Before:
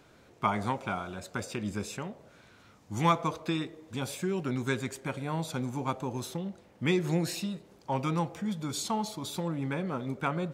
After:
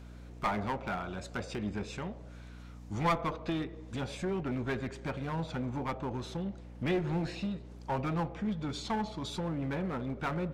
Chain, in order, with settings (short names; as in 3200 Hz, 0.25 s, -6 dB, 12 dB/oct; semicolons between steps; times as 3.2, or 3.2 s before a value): treble ducked by the level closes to 2700 Hz, closed at -29.5 dBFS; hum 60 Hz, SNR 15 dB; one-sided clip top -31 dBFS